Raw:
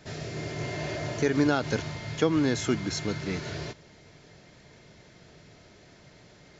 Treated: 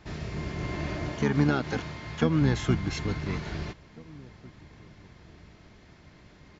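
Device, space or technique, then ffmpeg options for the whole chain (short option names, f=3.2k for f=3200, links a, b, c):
octave pedal: -filter_complex "[0:a]aemphasis=mode=reproduction:type=50kf,asplit=2[a][b];[b]asetrate=22050,aresample=44100,atempo=2,volume=-1dB[c];[a][c]amix=inputs=2:normalize=0,asettb=1/sr,asplit=3[d][e][f];[d]atrim=end=1.094[g];[e]atrim=start=1.09:end=2.42,asetpts=PTS-STARTPTS,afade=t=in:d=0.004:c=qsin,afade=t=out:st=1.326:d=0.004:c=qsin,highpass=f=150:p=1[h];[f]atrim=start=2.416[i];[g][h]acrossfade=d=0.004:c1=hsin:c2=qsin[j];[j][i]acrossfade=d=0.004:c1=qsin:c2=hsin,equalizer=f=570:w=0.93:g=-4.5,asplit=2[k][l];[l]adelay=1749,volume=-23dB,highshelf=f=4k:g=-39.4[m];[k][m]amix=inputs=2:normalize=0"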